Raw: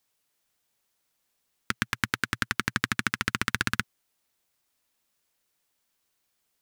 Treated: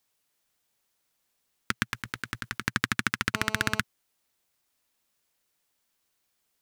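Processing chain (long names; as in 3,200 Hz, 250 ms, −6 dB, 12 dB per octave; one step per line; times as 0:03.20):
0:01.92–0:02.63: compressor whose output falls as the input rises −33 dBFS, ratio −1
0:03.34–0:03.80: phone interference −42 dBFS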